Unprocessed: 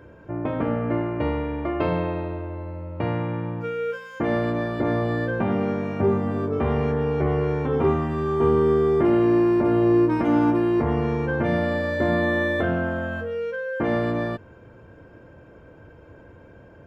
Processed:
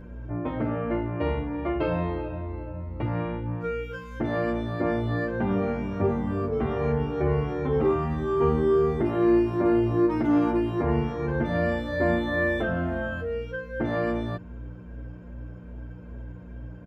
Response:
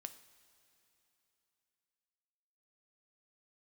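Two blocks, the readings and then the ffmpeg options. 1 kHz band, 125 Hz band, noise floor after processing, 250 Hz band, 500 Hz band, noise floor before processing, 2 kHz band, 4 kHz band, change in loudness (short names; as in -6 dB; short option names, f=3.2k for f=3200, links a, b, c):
-3.5 dB, -2.5 dB, -42 dBFS, -3.0 dB, -3.5 dB, -48 dBFS, -3.0 dB, n/a, -3.0 dB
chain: -filter_complex "[0:a]aeval=exprs='val(0)+0.0178*(sin(2*PI*60*n/s)+sin(2*PI*2*60*n/s)/2+sin(2*PI*3*60*n/s)/3+sin(2*PI*4*60*n/s)/4+sin(2*PI*5*60*n/s)/5)':c=same,asplit=2[a][b];[b]adelay=8,afreqshift=-2.5[c];[a][c]amix=inputs=2:normalize=1"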